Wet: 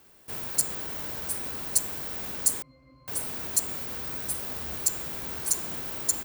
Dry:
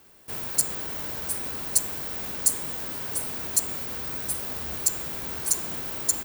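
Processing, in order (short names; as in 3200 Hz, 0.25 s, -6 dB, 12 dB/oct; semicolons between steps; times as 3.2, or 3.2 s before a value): 2.62–3.08 octave resonator C, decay 0.3 s; gain -2 dB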